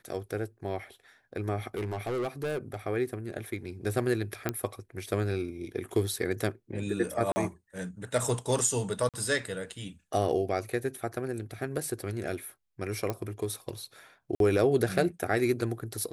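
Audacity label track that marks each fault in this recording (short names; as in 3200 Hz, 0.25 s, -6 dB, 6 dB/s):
1.750000	2.760000	clipped -28 dBFS
4.490000	4.490000	pop -14 dBFS
7.320000	7.360000	gap 40 ms
9.090000	9.140000	gap 47 ms
13.100000	13.100000	pop -17 dBFS
14.350000	14.400000	gap 52 ms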